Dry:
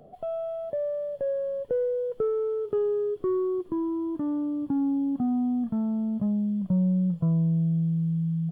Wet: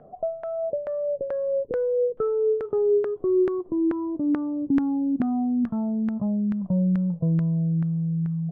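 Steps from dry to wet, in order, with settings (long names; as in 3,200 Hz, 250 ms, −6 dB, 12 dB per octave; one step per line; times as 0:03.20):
auto-filter low-pass saw down 2.3 Hz 300–1,600 Hz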